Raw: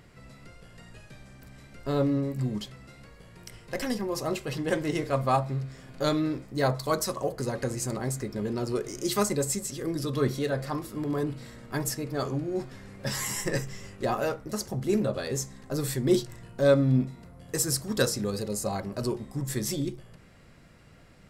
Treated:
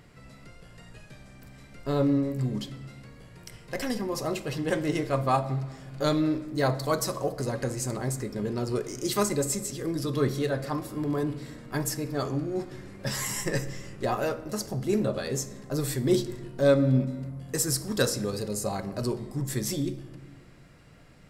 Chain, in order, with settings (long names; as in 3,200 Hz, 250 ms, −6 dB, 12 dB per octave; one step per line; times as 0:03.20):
rectangular room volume 1,100 cubic metres, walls mixed, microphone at 0.4 metres